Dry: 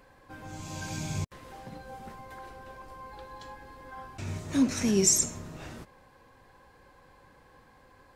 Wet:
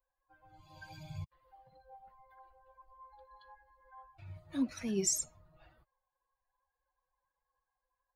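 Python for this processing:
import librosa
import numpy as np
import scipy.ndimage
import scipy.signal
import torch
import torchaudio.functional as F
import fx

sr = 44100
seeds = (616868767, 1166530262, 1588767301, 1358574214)

y = fx.bin_expand(x, sr, power=2.0)
y = y * 10.0 ** (-7.0 / 20.0)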